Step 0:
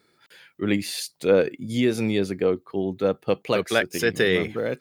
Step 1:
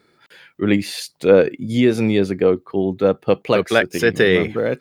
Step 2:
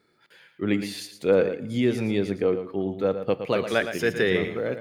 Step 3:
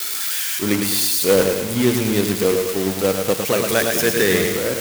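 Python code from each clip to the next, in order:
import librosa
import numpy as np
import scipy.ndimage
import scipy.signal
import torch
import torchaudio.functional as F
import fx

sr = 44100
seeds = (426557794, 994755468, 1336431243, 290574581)

y1 = fx.high_shelf(x, sr, hz=4100.0, db=-8.0)
y1 = y1 * librosa.db_to_amplitude(6.5)
y2 = y1 + 10.0 ** (-10.0 / 20.0) * np.pad(y1, (int(114 * sr / 1000.0), 0))[:len(y1)]
y2 = fx.rev_plate(y2, sr, seeds[0], rt60_s=1.2, hf_ratio=0.8, predelay_ms=0, drr_db=16.5)
y2 = y2 * librosa.db_to_amplitude(-8.0)
y3 = y2 + 0.5 * 10.0 ** (-16.0 / 20.0) * np.diff(np.sign(y2), prepend=np.sign(y2[:1]))
y3 = fx.quant_companded(y3, sr, bits=4)
y3 = fx.echo_crushed(y3, sr, ms=105, feedback_pct=55, bits=7, wet_db=-6.0)
y3 = y3 * librosa.db_to_amplitude(4.0)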